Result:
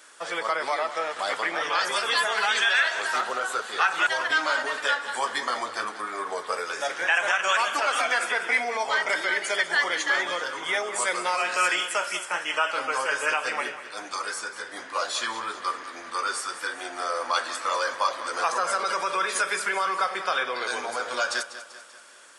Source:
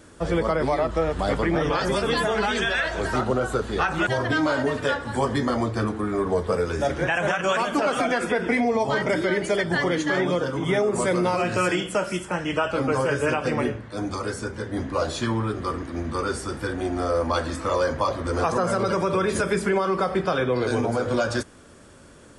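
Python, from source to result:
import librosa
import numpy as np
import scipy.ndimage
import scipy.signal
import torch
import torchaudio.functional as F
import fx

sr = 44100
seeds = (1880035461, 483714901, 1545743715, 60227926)

y = scipy.signal.sosfilt(scipy.signal.butter(2, 1100.0, 'highpass', fs=sr, output='sos'), x)
y = fx.echo_feedback(y, sr, ms=194, feedback_pct=52, wet_db=-13.5)
y = y * librosa.db_to_amplitude(4.0)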